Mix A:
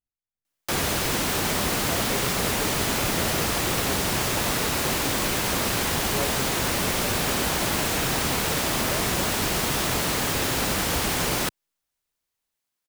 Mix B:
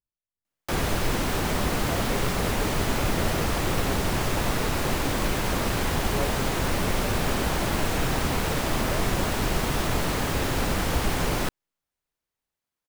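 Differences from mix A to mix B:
background: remove high-pass filter 95 Hz 6 dB per octave
master: add high-shelf EQ 2,600 Hz −8 dB

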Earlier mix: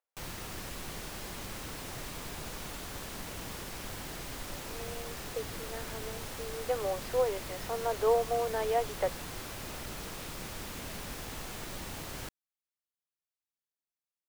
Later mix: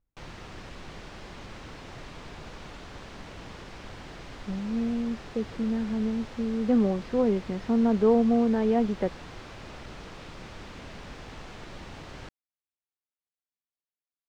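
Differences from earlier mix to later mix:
speech: remove Butterworth high-pass 480 Hz
master: add high-frequency loss of the air 140 metres

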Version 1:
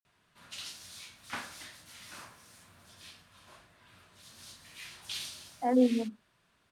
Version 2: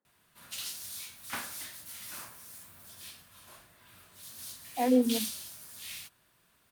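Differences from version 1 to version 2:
speech: entry −0.85 s
master: remove high-frequency loss of the air 68 metres

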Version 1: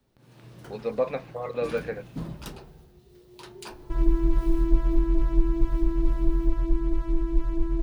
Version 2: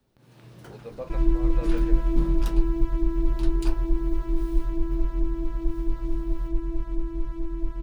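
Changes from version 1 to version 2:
speech −11.0 dB
second sound: entry −2.80 s

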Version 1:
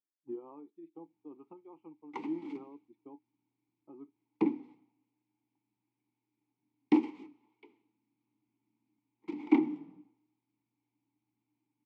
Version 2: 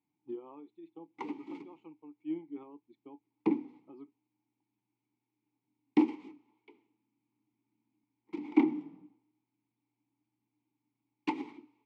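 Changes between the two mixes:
speech: remove low-pass filter 1,500 Hz 12 dB per octave
background: entry −0.95 s

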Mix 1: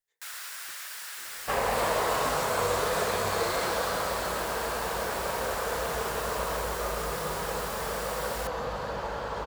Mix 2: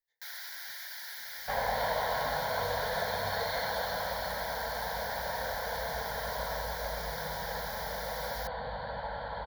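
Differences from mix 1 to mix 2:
second sound: add Chebyshev low-pass with heavy ripple 4,500 Hz, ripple 3 dB
master: add phaser with its sweep stopped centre 1,800 Hz, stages 8

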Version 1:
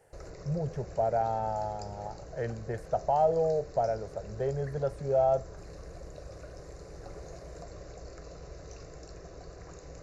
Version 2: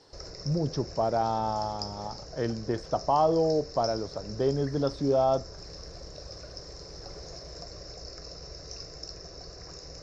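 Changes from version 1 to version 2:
speech: remove phaser with its sweep stopped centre 1,100 Hz, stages 6
master: add low-pass with resonance 5,300 Hz, resonance Q 14

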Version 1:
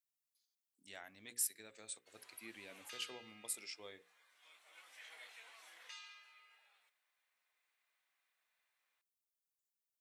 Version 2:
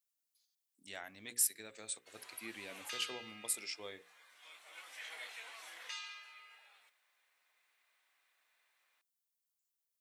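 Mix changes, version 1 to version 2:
speech +5.5 dB
background +8.0 dB

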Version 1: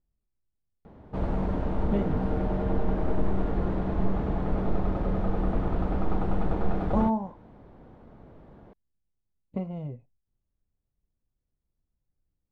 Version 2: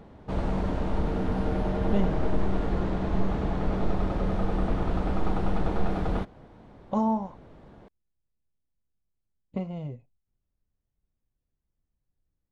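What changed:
background: entry −0.85 s
master: add high-shelf EQ 2,800 Hz +12 dB

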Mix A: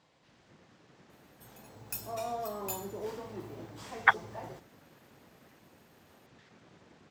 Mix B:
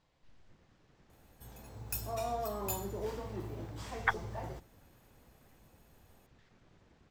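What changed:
speech −8.0 dB
master: remove high-pass filter 150 Hz 12 dB per octave

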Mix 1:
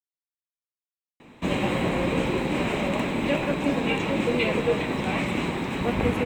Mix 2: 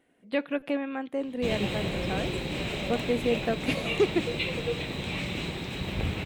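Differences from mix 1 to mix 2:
speech: entry −2.95 s
background: add octave-band graphic EQ 250/500/1,000/2,000/4,000/8,000 Hz −10/−3/−11/−5/+5/−4 dB

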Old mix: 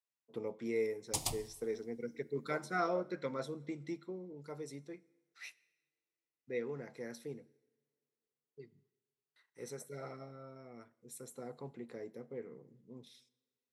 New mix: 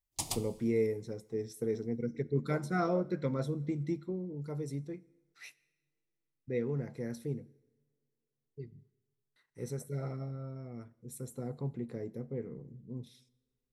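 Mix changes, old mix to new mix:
speech: remove meter weighting curve A
background: entry −0.95 s

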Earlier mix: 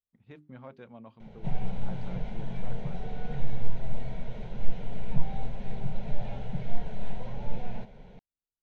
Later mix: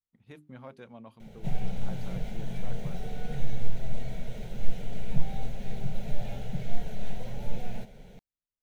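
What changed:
background: add parametric band 1,000 Hz −9 dB 0.41 octaves
master: remove high-frequency loss of the air 170 metres

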